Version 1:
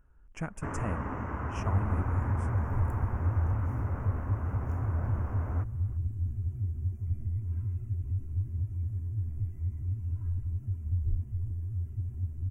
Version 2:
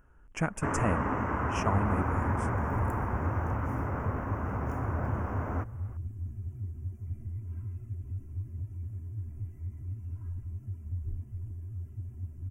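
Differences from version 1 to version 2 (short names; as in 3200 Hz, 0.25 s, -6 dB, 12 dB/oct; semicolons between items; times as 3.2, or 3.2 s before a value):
speech +8.0 dB; first sound +7.0 dB; master: add low shelf 110 Hz -9 dB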